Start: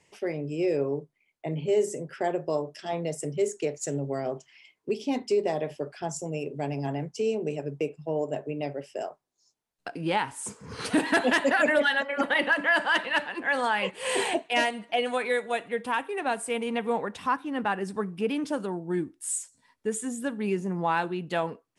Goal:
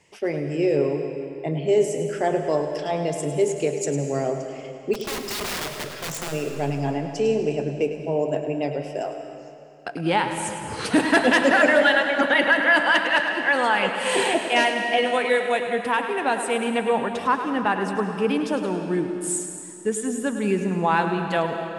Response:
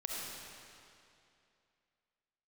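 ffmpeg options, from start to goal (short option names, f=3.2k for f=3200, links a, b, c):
-filter_complex "[0:a]highshelf=f=7.7k:g=-3,asplit=3[a][b][c];[a]afade=t=out:st=4.93:d=0.02[d];[b]aeval=exprs='(mod(31.6*val(0)+1,2)-1)/31.6':c=same,afade=t=in:st=4.93:d=0.02,afade=t=out:st=6.31:d=0.02[e];[c]afade=t=in:st=6.31:d=0.02[f];[d][e][f]amix=inputs=3:normalize=0,asplit=2[g][h];[1:a]atrim=start_sample=2205,adelay=104[i];[h][i]afir=irnorm=-1:irlink=0,volume=-7.5dB[j];[g][j]amix=inputs=2:normalize=0,volume=5dB"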